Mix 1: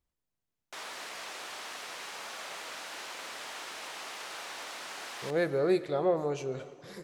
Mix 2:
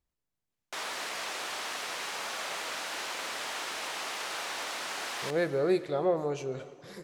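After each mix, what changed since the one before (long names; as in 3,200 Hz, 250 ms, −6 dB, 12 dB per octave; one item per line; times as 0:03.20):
background +5.5 dB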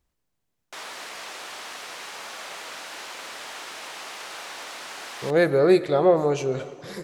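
speech +9.5 dB
background: send −6.5 dB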